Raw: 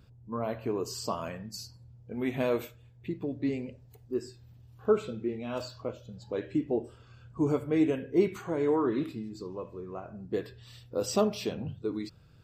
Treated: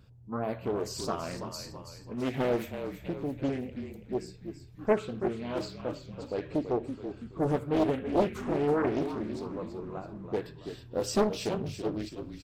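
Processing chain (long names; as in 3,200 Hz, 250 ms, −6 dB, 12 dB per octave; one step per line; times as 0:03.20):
echo with shifted repeats 330 ms, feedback 51%, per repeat −36 Hz, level −9 dB
highs frequency-modulated by the lows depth 0.89 ms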